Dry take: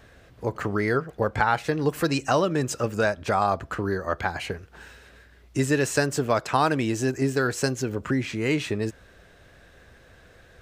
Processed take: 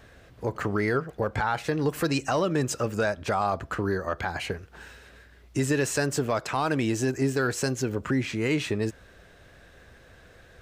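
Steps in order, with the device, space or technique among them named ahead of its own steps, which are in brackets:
soft clipper into limiter (soft clipping −8 dBFS, distortion −26 dB; brickwall limiter −15.5 dBFS, peak gain reduction 6 dB)

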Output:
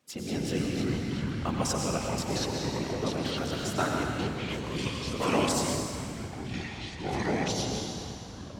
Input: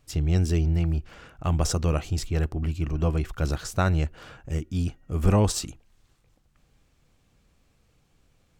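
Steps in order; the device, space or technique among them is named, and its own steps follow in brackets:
whispering ghost (random phases in short frames; high-pass filter 250 Hz 12 dB per octave; convolution reverb RT60 1.8 s, pre-delay 88 ms, DRR 1 dB)
0:04.78–0:05.49: meter weighting curve D
delay with pitch and tempo change per echo 153 ms, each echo −5 semitones, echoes 3
level −3 dB

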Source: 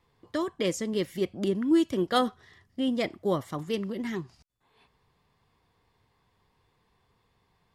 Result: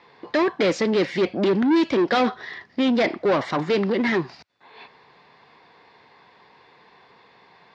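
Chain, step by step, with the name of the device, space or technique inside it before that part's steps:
overdrive pedal into a guitar cabinet (mid-hump overdrive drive 29 dB, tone 4,900 Hz, clips at −11 dBFS; loudspeaker in its box 90–4,600 Hz, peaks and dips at 100 Hz −9 dB, 1,200 Hz −5 dB, 3,100 Hz −7 dB)

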